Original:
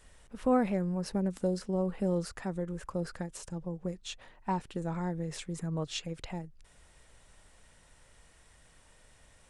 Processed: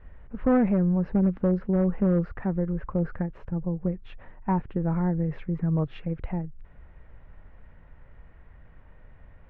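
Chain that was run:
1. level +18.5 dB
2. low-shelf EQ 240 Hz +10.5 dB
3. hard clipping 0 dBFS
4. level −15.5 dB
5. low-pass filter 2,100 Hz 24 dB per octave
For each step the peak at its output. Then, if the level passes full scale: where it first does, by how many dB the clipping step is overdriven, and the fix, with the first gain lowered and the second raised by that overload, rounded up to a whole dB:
+2.5, +6.0, 0.0, −15.5, −15.0 dBFS
step 1, 6.0 dB
step 1 +12.5 dB, step 4 −9.5 dB

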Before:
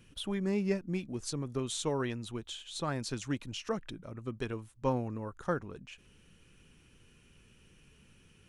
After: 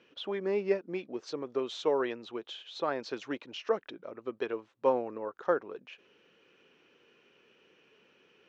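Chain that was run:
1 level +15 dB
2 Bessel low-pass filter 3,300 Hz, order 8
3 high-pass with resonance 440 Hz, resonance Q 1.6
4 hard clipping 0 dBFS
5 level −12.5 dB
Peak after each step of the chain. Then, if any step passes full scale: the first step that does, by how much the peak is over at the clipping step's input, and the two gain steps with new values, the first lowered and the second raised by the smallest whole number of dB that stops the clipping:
−3.5, −4.0, −2.0, −2.0, −14.5 dBFS
no step passes full scale

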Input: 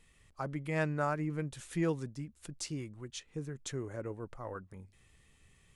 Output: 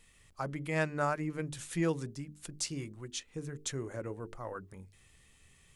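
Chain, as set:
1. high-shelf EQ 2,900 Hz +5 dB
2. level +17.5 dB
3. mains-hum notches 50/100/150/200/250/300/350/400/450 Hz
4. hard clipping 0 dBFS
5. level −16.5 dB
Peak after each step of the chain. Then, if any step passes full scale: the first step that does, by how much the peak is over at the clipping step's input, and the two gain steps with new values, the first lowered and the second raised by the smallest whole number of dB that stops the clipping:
−19.0, −1.5, −2.5, −2.5, −19.0 dBFS
no step passes full scale

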